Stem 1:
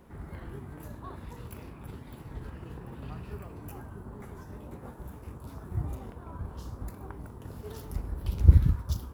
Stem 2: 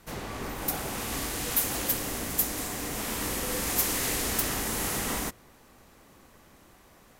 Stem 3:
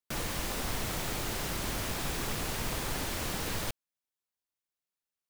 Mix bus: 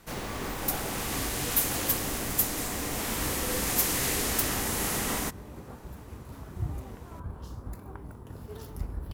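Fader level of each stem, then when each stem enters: −0.5, +0.5, −8.5 decibels; 0.85, 0.00, 0.00 seconds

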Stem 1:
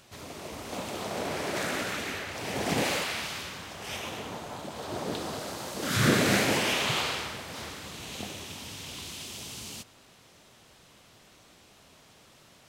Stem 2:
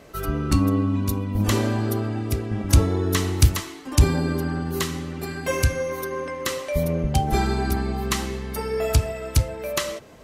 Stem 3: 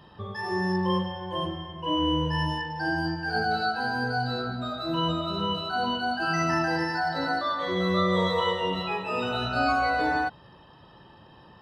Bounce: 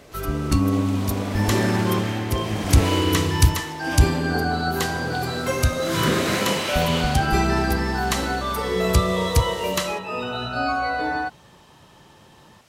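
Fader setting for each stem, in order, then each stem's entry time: 0.0, 0.0, +0.5 decibels; 0.00, 0.00, 1.00 seconds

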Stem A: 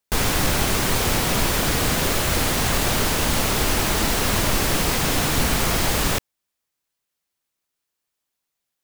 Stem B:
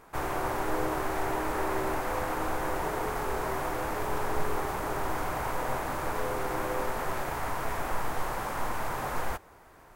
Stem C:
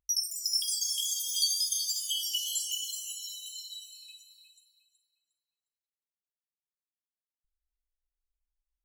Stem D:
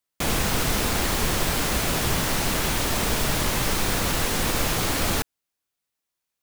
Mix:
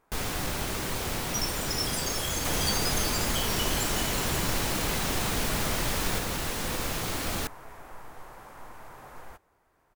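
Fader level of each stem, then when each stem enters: −11.0, −14.0, −3.5, −7.5 decibels; 0.00, 0.00, 1.25, 2.25 seconds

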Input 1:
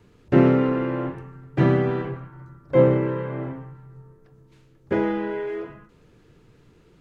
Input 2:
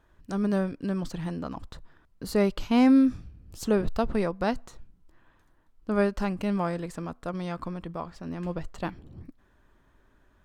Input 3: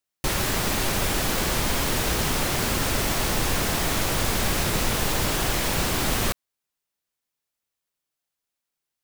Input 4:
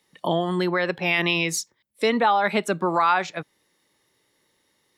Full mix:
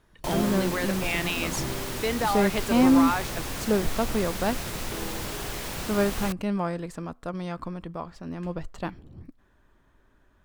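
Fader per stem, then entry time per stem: −16.0, 0.0, −9.5, −7.0 decibels; 0.00, 0.00, 0.00, 0.00 seconds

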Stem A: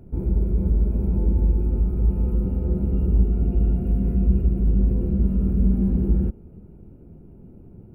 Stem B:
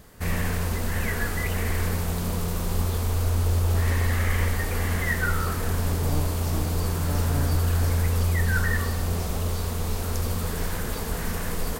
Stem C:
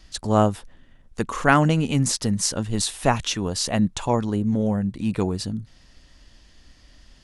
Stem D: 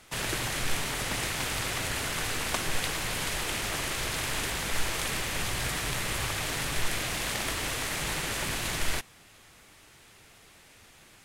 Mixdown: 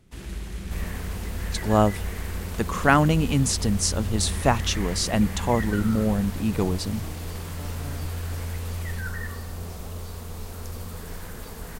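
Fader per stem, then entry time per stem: −13.5, −8.5, −1.0, −14.5 decibels; 0.00, 0.50, 1.40, 0.00 seconds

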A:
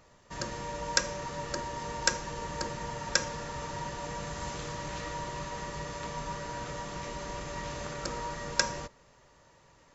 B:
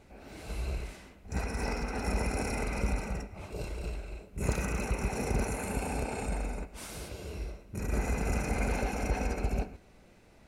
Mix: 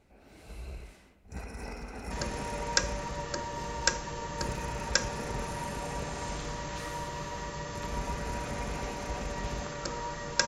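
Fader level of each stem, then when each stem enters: 0.0, −7.5 decibels; 1.80, 0.00 seconds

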